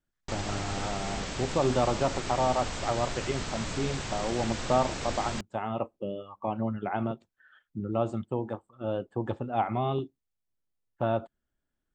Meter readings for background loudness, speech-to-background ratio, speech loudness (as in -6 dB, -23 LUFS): -35.5 LUFS, 4.0 dB, -31.5 LUFS